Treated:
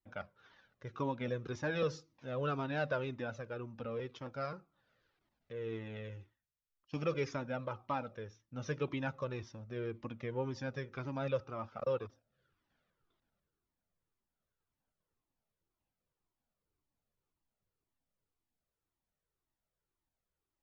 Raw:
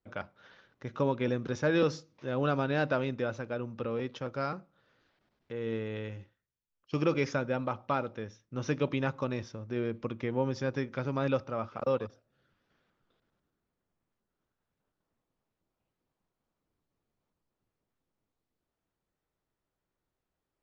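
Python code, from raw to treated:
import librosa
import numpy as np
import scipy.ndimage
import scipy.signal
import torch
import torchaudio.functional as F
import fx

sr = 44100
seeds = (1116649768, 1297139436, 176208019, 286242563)

y = fx.comb_cascade(x, sr, direction='falling', hz=1.9)
y = y * librosa.db_to_amplitude(-2.0)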